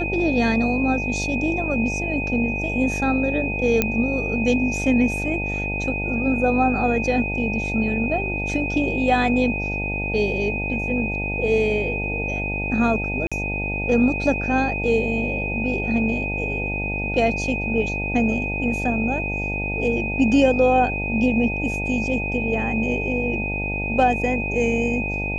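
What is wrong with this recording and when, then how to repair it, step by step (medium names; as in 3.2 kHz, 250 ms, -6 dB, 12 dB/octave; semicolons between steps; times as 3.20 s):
buzz 50 Hz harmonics 18 -28 dBFS
whine 2.5 kHz -26 dBFS
3.82 s: pop -4 dBFS
13.27–13.32 s: dropout 46 ms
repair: de-click; de-hum 50 Hz, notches 18; band-stop 2.5 kHz, Q 30; interpolate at 13.27 s, 46 ms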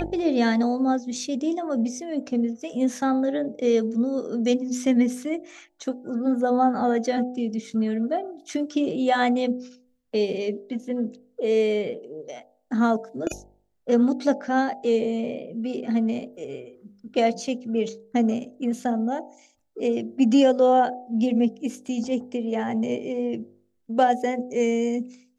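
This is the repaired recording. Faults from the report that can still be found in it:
nothing left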